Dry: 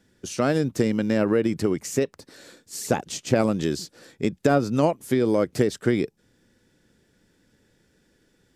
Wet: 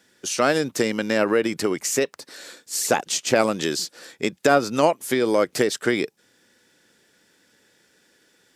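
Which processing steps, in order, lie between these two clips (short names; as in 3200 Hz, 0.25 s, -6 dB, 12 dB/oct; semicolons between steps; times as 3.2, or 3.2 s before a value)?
HPF 870 Hz 6 dB/oct; gain +8.5 dB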